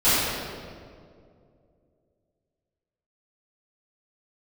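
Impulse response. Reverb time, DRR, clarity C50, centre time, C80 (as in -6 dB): 2.3 s, -18.0 dB, -4.0 dB, 0.148 s, -1.5 dB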